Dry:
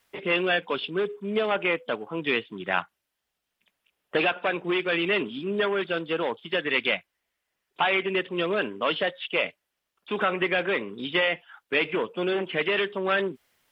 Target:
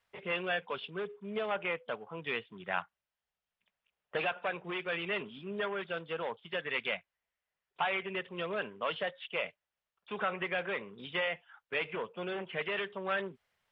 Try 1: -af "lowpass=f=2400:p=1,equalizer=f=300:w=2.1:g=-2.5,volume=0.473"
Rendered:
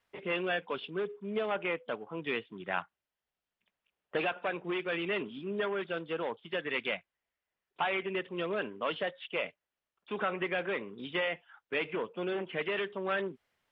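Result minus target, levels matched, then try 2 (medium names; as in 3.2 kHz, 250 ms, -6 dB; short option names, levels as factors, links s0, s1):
250 Hz band +3.5 dB
-af "lowpass=f=2400:p=1,equalizer=f=300:w=2.1:g=-12.5,volume=0.473"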